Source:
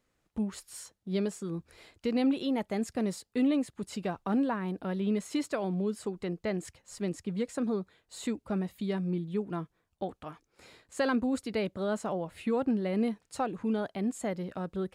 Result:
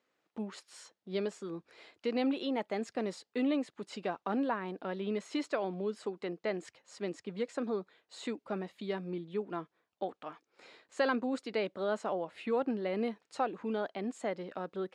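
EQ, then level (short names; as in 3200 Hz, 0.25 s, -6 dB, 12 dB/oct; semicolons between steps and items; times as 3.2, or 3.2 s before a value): BPF 320–4900 Hz; 0.0 dB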